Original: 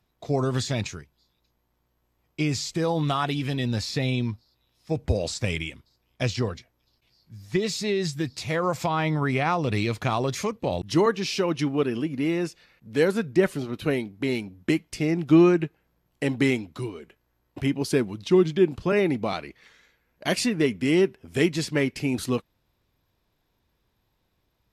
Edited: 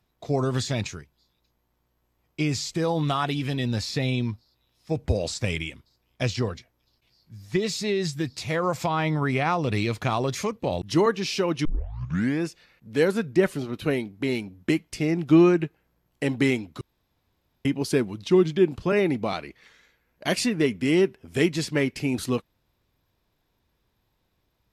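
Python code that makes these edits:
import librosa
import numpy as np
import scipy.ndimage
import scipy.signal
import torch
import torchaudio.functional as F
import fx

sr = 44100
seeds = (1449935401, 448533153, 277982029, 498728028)

y = fx.edit(x, sr, fx.tape_start(start_s=11.65, length_s=0.8),
    fx.room_tone_fill(start_s=16.81, length_s=0.84), tone=tone)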